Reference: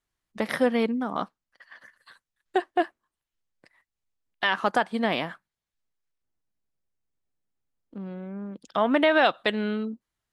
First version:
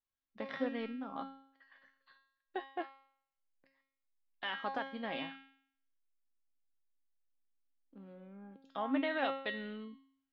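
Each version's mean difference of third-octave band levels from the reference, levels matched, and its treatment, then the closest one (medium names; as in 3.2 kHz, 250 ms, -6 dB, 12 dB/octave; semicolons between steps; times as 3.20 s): 3.5 dB: low-pass 4.3 kHz 24 dB/octave; hum notches 60/120/180 Hz; feedback comb 270 Hz, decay 0.62 s, harmonics all, mix 90%; trim +2 dB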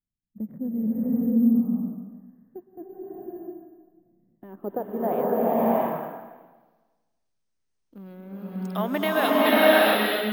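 13.5 dB: low-pass sweep 200 Hz -> 6.3 kHz, 4.25–6.40 s; careless resampling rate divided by 3×, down filtered, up hold; swelling reverb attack 650 ms, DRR -9 dB; trim -6 dB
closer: first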